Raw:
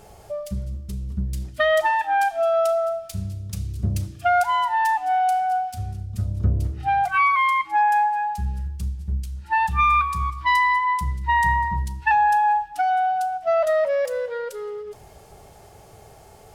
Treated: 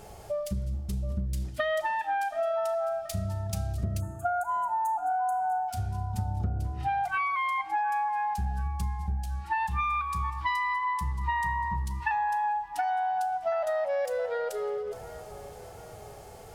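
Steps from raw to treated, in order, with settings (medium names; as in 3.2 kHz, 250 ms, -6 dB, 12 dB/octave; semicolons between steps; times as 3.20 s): time-frequency box 4.00–5.68 s, 1.6–6.3 kHz -23 dB; compression, threshold -27 dBFS, peak gain reduction 12 dB; feedback echo behind a band-pass 727 ms, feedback 50%, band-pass 850 Hz, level -14 dB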